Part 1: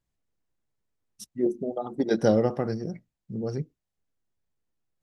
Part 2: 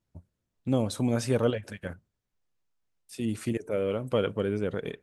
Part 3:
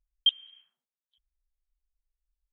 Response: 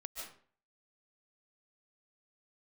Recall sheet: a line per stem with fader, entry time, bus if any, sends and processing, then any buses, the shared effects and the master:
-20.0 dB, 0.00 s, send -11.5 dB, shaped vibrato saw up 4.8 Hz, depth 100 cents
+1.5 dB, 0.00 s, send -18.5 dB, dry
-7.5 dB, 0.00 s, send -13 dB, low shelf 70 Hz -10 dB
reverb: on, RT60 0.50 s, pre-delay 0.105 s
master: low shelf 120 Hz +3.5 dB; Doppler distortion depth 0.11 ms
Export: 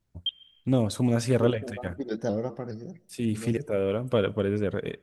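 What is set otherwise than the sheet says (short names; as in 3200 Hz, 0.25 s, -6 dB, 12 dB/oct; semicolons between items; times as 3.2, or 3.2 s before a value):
stem 1 -20.0 dB -> -8.5 dB; reverb return -7.5 dB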